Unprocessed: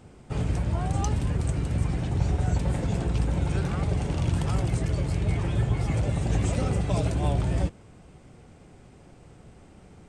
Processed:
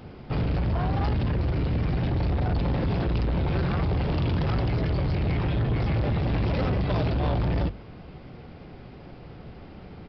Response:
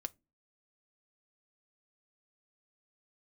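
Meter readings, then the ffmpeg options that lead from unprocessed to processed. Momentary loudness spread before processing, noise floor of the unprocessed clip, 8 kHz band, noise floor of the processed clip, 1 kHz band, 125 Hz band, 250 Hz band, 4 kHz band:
2 LU, -52 dBFS, under -25 dB, -45 dBFS, +2.5 dB, +0.5 dB, +2.0 dB, +2.5 dB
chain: -af "bandreject=f=50:t=h:w=6,bandreject=f=100:t=h:w=6,aresample=11025,asoftclip=type=tanh:threshold=0.0355,aresample=44100,volume=2.37"

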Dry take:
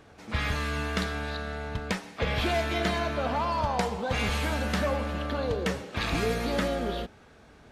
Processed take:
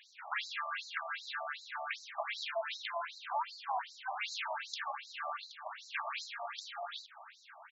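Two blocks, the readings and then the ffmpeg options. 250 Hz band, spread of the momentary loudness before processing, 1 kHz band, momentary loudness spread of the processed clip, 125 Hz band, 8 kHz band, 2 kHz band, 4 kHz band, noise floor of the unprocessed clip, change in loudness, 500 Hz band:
under -40 dB, 7 LU, -7.0 dB, 6 LU, under -40 dB, -10.5 dB, -7.5 dB, -7.5 dB, -54 dBFS, -10.5 dB, -15.5 dB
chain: -filter_complex "[0:a]acrossover=split=220[s0][s1];[s1]acompressor=threshold=0.0141:ratio=10[s2];[s0][s2]amix=inputs=2:normalize=0,asplit=2[s3][s4];[s4]adelay=1224,volume=0.178,highshelf=f=4000:g=-27.6[s5];[s3][s5]amix=inputs=2:normalize=0,afftfilt=real='re*between(b*sr/1024,830*pow(5500/830,0.5+0.5*sin(2*PI*2.6*pts/sr))/1.41,830*pow(5500/830,0.5+0.5*sin(2*PI*2.6*pts/sr))*1.41)':imag='im*between(b*sr/1024,830*pow(5500/830,0.5+0.5*sin(2*PI*2.6*pts/sr))/1.41,830*pow(5500/830,0.5+0.5*sin(2*PI*2.6*pts/sr))*1.41)':win_size=1024:overlap=0.75,volume=2.37"

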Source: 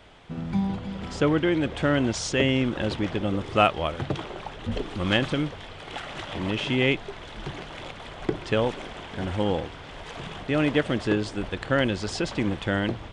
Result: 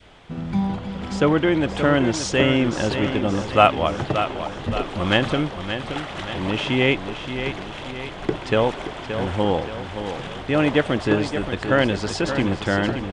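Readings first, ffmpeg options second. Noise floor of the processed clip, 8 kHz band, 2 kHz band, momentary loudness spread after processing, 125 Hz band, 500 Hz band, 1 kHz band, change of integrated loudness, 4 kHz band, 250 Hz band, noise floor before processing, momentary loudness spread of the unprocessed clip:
-35 dBFS, +3.5 dB, +4.5 dB, 11 LU, +3.5 dB, +5.5 dB, +6.5 dB, +4.0 dB, +4.0 dB, +4.0 dB, -41 dBFS, 15 LU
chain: -filter_complex "[0:a]adynamicequalizer=threshold=0.0178:dfrequency=870:dqfactor=0.93:tfrequency=870:tqfactor=0.93:attack=5:release=100:ratio=0.375:range=2:mode=boostabove:tftype=bell,asplit=2[s0][s1];[s1]aecho=0:1:575|1150|1725|2300|2875|3450:0.355|0.177|0.0887|0.0444|0.0222|0.0111[s2];[s0][s2]amix=inputs=2:normalize=0,volume=1.41"

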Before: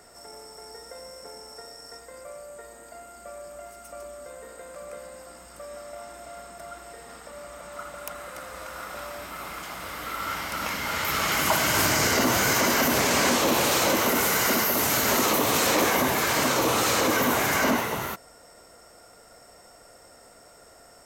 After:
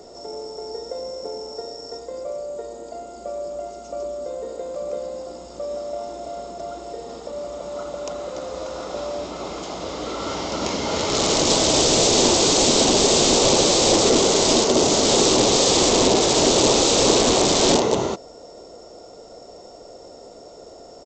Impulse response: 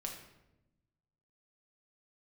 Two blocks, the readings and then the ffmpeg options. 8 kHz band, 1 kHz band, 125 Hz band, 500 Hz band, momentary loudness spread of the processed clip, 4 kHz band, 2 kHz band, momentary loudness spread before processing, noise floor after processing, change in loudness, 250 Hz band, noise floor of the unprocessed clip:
+7.5 dB, +2.0 dB, +5.0 dB, +9.0 dB, 18 LU, +9.0 dB, -5.0 dB, 21 LU, -43 dBFS, +5.0 dB, +6.5 dB, -52 dBFS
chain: -af "aresample=16000,aeval=exprs='(mod(8.41*val(0)+1,2)-1)/8.41':c=same,aresample=44100,firequalizer=gain_entry='entry(120,0);entry(380,10);entry(1600,-14);entry(3600,1)':delay=0.05:min_phase=1,volume=2"

